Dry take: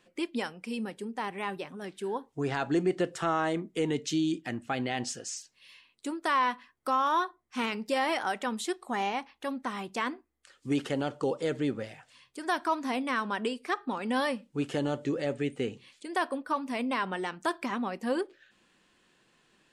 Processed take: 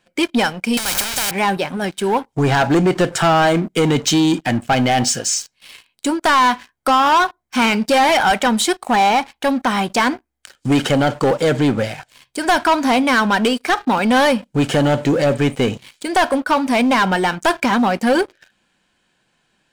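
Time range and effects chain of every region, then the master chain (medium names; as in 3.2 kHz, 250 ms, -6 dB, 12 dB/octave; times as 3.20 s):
0.77–1.31 s: jump at every zero crossing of -42.5 dBFS + spectrum-flattening compressor 10:1
whole clip: comb 1.3 ms, depth 39%; waveshaping leveller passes 3; trim +7.5 dB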